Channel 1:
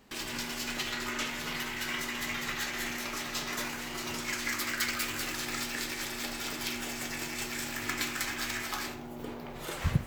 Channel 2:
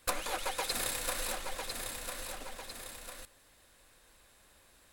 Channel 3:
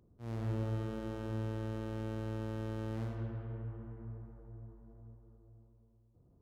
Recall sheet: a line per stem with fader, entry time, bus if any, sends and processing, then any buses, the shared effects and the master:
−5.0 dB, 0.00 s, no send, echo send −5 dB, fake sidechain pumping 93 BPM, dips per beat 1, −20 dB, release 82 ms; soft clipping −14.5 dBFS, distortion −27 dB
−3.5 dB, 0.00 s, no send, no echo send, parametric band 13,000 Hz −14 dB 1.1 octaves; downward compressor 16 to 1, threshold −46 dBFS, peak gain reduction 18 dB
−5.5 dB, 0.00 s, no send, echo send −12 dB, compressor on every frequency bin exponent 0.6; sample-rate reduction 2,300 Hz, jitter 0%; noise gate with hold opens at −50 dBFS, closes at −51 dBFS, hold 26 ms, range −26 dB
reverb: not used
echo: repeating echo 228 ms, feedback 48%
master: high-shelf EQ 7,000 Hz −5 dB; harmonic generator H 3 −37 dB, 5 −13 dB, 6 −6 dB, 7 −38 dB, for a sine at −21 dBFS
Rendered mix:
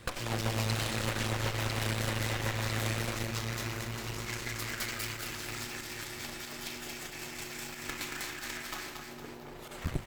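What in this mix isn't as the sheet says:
stem 1 −5.0 dB → −12.5 dB
stem 2 −3.5 dB → +3.5 dB
master: missing high-shelf EQ 7,000 Hz −5 dB

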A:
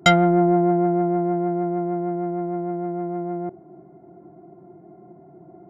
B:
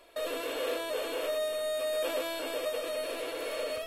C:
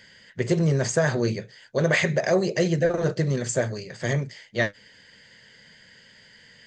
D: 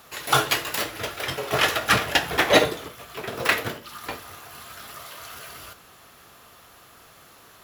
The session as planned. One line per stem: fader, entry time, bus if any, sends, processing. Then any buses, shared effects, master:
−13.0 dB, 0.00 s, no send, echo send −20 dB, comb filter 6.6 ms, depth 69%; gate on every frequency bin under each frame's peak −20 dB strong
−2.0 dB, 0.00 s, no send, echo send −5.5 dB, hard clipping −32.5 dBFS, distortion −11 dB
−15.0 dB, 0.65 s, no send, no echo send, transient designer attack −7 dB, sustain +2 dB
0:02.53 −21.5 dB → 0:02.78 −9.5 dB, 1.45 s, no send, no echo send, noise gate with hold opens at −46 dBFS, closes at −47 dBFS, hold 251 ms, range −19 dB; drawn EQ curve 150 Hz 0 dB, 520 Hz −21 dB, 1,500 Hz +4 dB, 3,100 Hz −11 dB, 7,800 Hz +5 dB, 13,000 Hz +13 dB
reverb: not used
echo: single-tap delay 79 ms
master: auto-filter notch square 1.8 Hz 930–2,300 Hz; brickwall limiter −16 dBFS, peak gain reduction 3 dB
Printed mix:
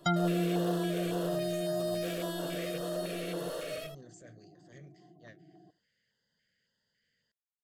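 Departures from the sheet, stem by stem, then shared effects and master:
stem C −15.0 dB → −26.0 dB
stem D: muted

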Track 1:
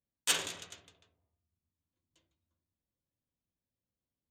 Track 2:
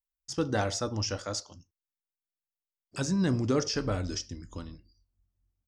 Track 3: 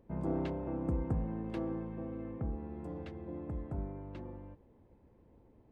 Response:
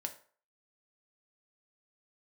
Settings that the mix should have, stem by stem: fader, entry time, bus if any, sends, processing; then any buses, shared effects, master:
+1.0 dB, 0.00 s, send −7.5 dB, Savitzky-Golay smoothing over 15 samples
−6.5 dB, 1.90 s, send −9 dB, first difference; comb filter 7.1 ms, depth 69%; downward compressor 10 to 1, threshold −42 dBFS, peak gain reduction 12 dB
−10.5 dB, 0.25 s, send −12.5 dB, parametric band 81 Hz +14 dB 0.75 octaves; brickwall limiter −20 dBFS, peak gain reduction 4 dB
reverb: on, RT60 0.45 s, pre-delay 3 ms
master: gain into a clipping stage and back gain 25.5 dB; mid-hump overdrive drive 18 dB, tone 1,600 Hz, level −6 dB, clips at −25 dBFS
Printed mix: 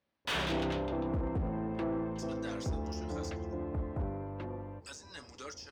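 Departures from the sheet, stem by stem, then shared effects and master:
stem 1: send −7.5 dB → −0.5 dB
stem 3 −10.5 dB → −2.0 dB

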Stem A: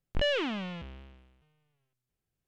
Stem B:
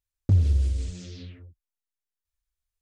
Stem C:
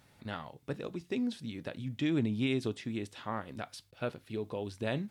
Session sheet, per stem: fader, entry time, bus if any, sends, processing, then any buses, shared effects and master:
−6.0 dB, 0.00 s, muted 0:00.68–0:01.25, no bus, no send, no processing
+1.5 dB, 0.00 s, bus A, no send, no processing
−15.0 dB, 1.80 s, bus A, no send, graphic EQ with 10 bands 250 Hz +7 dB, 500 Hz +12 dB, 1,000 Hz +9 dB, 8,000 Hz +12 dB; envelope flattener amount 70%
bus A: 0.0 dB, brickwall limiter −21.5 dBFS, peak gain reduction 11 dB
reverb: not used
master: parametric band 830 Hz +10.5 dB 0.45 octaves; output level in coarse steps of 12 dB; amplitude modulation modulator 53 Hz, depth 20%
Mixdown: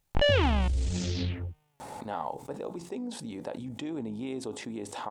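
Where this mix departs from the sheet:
stem A −6.0 dB → +4.5 dB
stem B +1.5 dB → +12.5 dB
master: missing output level in coarse steps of 12 dB

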